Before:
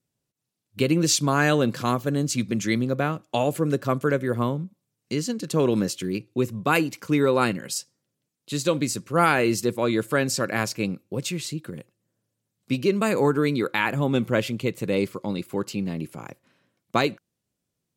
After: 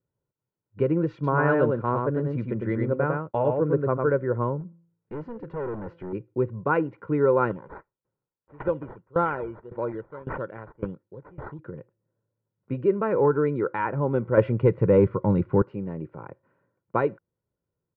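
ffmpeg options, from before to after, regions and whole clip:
ffmpeg -i in.wav -filter_complex "[0:a]asettb=1/sr,asplit=3[link_01][link_02][link_03];[link_01]atrim=end=1.134[link_04];[link_02]atrim=start=1.13:end=4.1,asetpts=PTS-STARTPTS,afade=type=in:duration=0.004:curve=qsin,afade=type=out:start_time=2.966:duration=0.004:curve=qsin,agate=range=-33dB:threshold=-30dB:ratio=3:release=100:detection=peak,aecho=1:1:103:0.668,atrim=end_sample=130977[link_05];[link_03]atrim=start=4.096[link_06];[link_04][link_05]acrossfade=duration=0.004:curve1=hsin:curve2=qsin[link_07];[link_07][link_06]acrossfade=duration=0.004:curve1=qsin:curve2=hsin,asettb=1/sr,asplit=3[link_08][link_09][link_10];[link_08]atrim=end=4.604[link_11];[link_09]atrim=start=4.6:end=6.13,asetpts=PTS-STARTPTS,afade=type=in:duration=0.004:curve=qsin,afade=type=out:start_time=1.526:duration=0.004:curve=qsin,bandreject=frequency=168.8:width_type=h:width=4,bandreject=frequency=337.6:width_type=h:width=4,bandreject=frequency=506.4:width_type=h:width=4,bandreject=frequency=675.2:width_type=h:width=4,bandreject=frequency=844:width_type=h:width=4,bandreject=frequency=1012.8:width_type=h:width=4,bandreject=frequency=1181.6:width_type=h:width=4,bandreject=frequency=1350.4:width_type=h:width=4,bandreject=frequency=1519.2:width_type=h:width=4,bandreject=frequency=1688:width_type=h:width=4,bandreject=frequency=1856.8:width_type=h:width=4,bandreject=frequency=2025.6:width_type=h:width=4,bandreject=frequency=2194.4:width_type=h:width=4,bandreject=frequency=2363.2:width_type=h:width=4,bandreject=frequency=2532:width_type=h:width=4,bandreject=frequency=2700.8:width_type=h:width=4,bandreject=frequency=2869.6:width_type=h:width=4,bandreject=frequency=3038.4:width_type=h:width=4,bandreject=frequency=3207.2:width_type=h:width=4,bandreject=frequency=3376:width_type=h:width=4,bandreject=frequency=3544.8:width_type=h:width=4,bandreject=frequency=3713.6:width_type=h:width=4,bandreject=frequency=3882.4:width_type=h:width=4,bandreject=frequency=4051.2:width_type=h:width=4,bandreject=frequency=4220:width_type=h:width=4,bandreject=frequency=4388.8:width_type=h:width=4,bandreject=frequency=4557.6:width_type=h:width=4,bandreject=frequency=4726.4:width_type=h:width=4,bandreject=frequency=4895.2:width_type=h:width=4,bandreject=frequency=5064:width_type=h:width=4,bandreject=frequency=5232.8:width_type=h:width=4,bandreject=frequency=5401.6:width_type=h:width=4,bandreject=frequency=5570.4:width_type=h:width=4,bandreject=frequency=5739.2:width_type=h:width=4,bandreject=frequency=5908:width_type=h:width=4,asubboost=boost=6.5:cutoff=89,volume=29dB,asoftclip=hard,volume=-29dB[link_12];[link_10]atrim=start=6.126[link_13];[link_11][link_12]acrossfade=duration=0.004:curve1=hsin:curve2=qsin[link_14];[link_14][link_13]acrossfade=duration=0.004:curve1=qsin:curve2=hsin,asettb=1/sr,asplit=3[link_15][link_16][link_17];[link_15]atrim=end=7.494[link_18];[link_16]atrim=start=7.49:end=11.59,asetpts=PTS-STARTPTS,afade=type=in:duration=0.004:curve=qsin,afade=type=out:start_time=4.096:duration=0.004:curve=qsin,acrusher=samples=13:mix=1:aa=0.000001:lfo=1:lforange=7.8:lforate=1.6,aeval=exprs='val(0)*pow(10,-21*if(lt(mod(1.8*n/s,1),2*abs(1.8)/1000),1-mod(1.8*n/s,1)/(2*abs(1.8)/1000),(mod(1.8*n/s,1)-2*abs(1.8)/1000)/(1-2*abs(1.8)/1000))/20)':channel_layout=same[link_19];[link_17]atrim=start=11.586[link_20];[link_18][link_19]acrossfade=duration=0.004:curve1=hsin:curve2=qsin[link_21];[link_21][link_20]acrossfade=duration=0.004:curve1=qsin:curve2=hsin,asettb=1/sr,asplit=3[link_22][link_23][link_24];[link_22]atrim=end=14.374[link_25];[link_23]atrim=start=14.37:end=15.62,asetpts=PTS-STARTPTS,afade=type=in:duration=0.004:curve=qsin,afade=type=out:start_time=1.246:duration=0.004:curve=qsin,acontrast=89,asubboost=boost=7.5:cutoff=210[link_26];[link_24]atrim=start=15.616[link_27];[link_25][link_26]acrossfade=duration=0.004:curve1=hsin:curve2=qsin[link_28];[link_28][link_27]acrossfade=duration=0.004:curve1=qsin:curve2=hsin,lowpass=frequency=1500:width=0.5412,lowpass=frequency=1500:width=1.3066,aecho=1:1:2.1:0.49,volume=-1.5dB" out.wav

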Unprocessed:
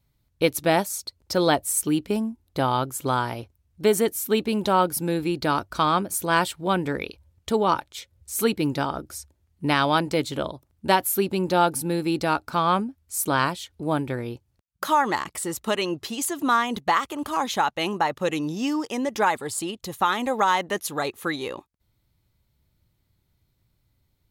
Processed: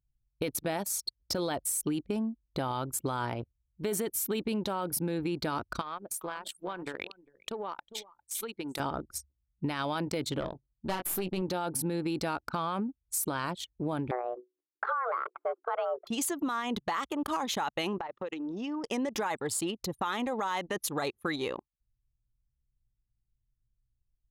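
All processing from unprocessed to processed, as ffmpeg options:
ffmpeg -i in.wav -filter_complex "[0:a]asettb=1/sr,asplit=3[link_01][link_02][link_03];[link_01]atrim=end=5.814[link_04];[link_02]atrim=start=5.81:end=8.8,asetpts=PTS-STARTPTS,afade=type=in:duration=0.004:curve=qsin,afade=type=out:start_time=2.986:duration=0.004:curve=qsin,highpass=frequency=740:poles=1,acompressor=threshold=-31dB:ratio=16:attack=3.2:release=140:knee=1:detection=peak,aecho=1:1:402:0.376,atrim=end_sample=131859[link_05];[link_03]atrim=start=8.796[link_06];[link_04][link_05]acrossfade=duration=0.004:curve1=hsin:curve2=qsin[link_07];[link_07][link_06]acrossfade=duration=0.004:curve1=qsin:curve2=hsin,asettb=1/sr,asplit=3[link_08][link_09][link_10];[link_08]atrim=end=10.404[link_11];[link_09]atrim=start=10.4:end=11.42,asetpts=PTS-STARTPTS,afade=type=in:duration=0.004:curve=qsin,afade=type=out:start_time=1.016:duration=0.004:curve=qsin,asplit=2[link_12][link_13];[link_13]adelay=22,volume=-7.5dB[link_14];[link_12][link_14]amix=inputs=2:normalize=0,atrim=end_sample=44982,aeval=exprs='(tanh(6.31*val(0)+0.65)-tanh(0.65))/6.31':channel_layout=same[link_15];[link_10]atrim=start=11.416[link_16];[link_11][link_15]acrossfade=duration=0.004:curve1=hsin:curve2=qsin[link_17];[link_17][link_16]acrossfade=duration=0.004:curve1=qsin:curve2=hsin,asettb=1/sr,asplit=3[link_18][link_19][link_20];[link_18]atrim=end=14.114[link_21];[link_19]atrim=start=14.11:end=16.07,asetpts=PTS-STARTPTS,afade=type=in:duration=0.004:curve=qsin,afade=type=out:start_time=1.956:duration=0.004:curve=qsin,lowpass=frequency=1000:width_type=q:width=2.2,bandreject=frequency=60:width_type=h:width=6,bandreject=frequency=120:width_type=h:width=6,bandreject=frequency=180:width_type=h:width=6,bandreject=frequency=240:width_type=h:width=6,afreqshift=250[link_22];[link_20]atrim=start=16.066[link_23];[link_21][link_22]acrossfade=duration=0.004:curve1=hsin:curve2=qsin[link_24];[link_24][link_23]acrossfade=duration=0.004:curve1=qsin:curve2=hsin,asettb=1/sr,asplit=3[link_25][link_26][link_27];[link_25]atrim=end=17.984[link_28];[link_26]atrim=start=17.98:end=18.84,asetpts=PTS-STARTPTS,afade=type=in:duration=0.004:curve=qsin,afade=type=out:start_time=0.856:duration=0.004:curve=qsin,highpass=290,lowpass=6600,acompressor=threshold=-31dB:ratio=12:attack=3.2:release=140:knee=1:detection=peak[link_29];[link_27]atrim=start=18.836[link_30];[link_28][link_29]acrossfade=duration=0.004:curve1=hsin:curve2=qsin[link_31];[link_31][link_30]acrossfade=duration=0.004:curve1=qsin:curve2=hsin,anlmdn=3.98,alimiter=limit=-18.5dB:level=0:latency=1:release=15,acompressor=threshold=-28dB:ratio=6" out.wav

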